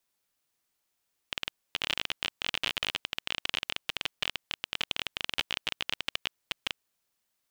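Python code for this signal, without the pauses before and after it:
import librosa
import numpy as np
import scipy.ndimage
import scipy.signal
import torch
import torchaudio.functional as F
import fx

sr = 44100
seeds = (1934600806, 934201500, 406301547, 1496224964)

y = fx.geiger_clicks(sr, seeds[0], length_s=5.49, per_s=24.0, level_db=-12.0)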